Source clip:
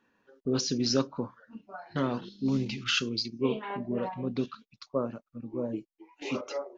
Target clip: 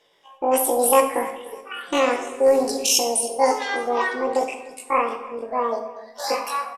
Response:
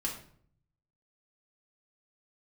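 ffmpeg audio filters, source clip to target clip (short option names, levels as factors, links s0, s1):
-filter_complex "[0:a]asetrate=88200,aresample=44100,atempo=0.5,aecho=1:1:303|606|909:0.1|0.039|0.0152,asplit=2[s0][s1];[1:a]atrim=start_sample=2205,asetrate=26901,aresample=44100,lowshelf=f=170:g=-6[s2];[s1][s2]afir=irnorm=-1:irlink=0,volume=0.631[s3];[s0][s3]amix=inputs=2:normalize=0,volume=1.58"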